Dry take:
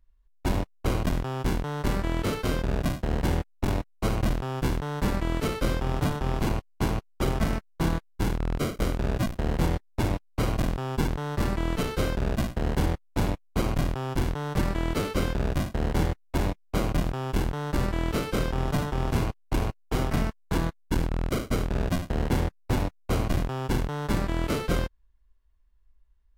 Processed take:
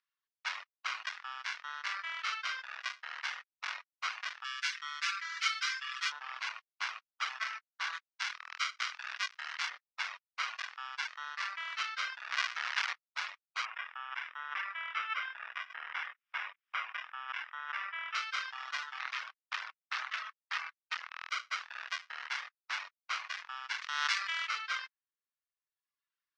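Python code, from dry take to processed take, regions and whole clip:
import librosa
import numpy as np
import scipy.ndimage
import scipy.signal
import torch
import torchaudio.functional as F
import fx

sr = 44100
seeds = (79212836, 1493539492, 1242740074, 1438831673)

y = fx.chain(x, sr, fx.highpass(hz=1300.0, slope=24),
    fx.high_shelf(hz=5600.0, db=11.0),
    fx.comb(ms=5.9, depth=0.87), at=(4.44, 6.12))
y = fx.chain(y, sr, fx.highpass(hz=580.0, slope=12),
    fx.quant_float(bits=2),
    fx.high_shelf(hz=2600.0, db=5.5), at=(7.93, 9.7))
y = fx.chain(y, sr, fx.lowpass(hz=12000.0, slope=12),
    fx.power_curve(exponent=0.35),
    fx.peak_eq(hz=190.0, db=-15.0, octaves=0.68), at=(12.31, 12.93))
y = fx.chain(y, sr, fx.savgol(points=25),
    fx.pre_swell(db_per_s=120.0), at=(13.65, 18.15))
y = fx.chain(y, sr, fx.self_delay(depth_ms=0.39),
    fx.high_shelf(hz=5800.0, db=-10.0),
    fx.band_squash(depth_pct=40), at=(18.99, 21.31))
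y = fx.chain(y, sr, fx.high_shelf(hz=2800.0, db=11.5),
    fx.pre_swell(db_per_s=41.0), at=(23.82, 24.48))
y = scipy.signal.sosfilt(scipy.signal.ellip(3, 1.0, 70, [1200.0, 5600.0], 'bandpass', fs=sr, output='sos'), y)
y = fx.dynamic_eq(y, sr, hz=2000.0, q=1.4, threshold_db=-52.0, ratio=4.0, max_db=5)
y = fx.dereverb_blind(y, sr, rt60_s=1.1)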